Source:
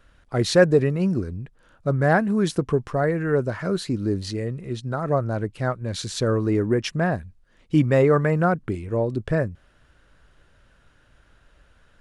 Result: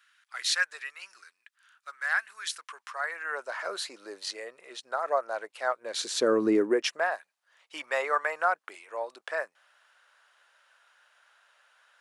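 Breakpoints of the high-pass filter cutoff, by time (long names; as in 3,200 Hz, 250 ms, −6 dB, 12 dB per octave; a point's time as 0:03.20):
high-pass filter 24 dB per octave
0:02.59 1,400 Hz
0:03.70 620 Hz
0:05.68 620 Hz
0:06.47 220 Hz
0:07.11 740 Hz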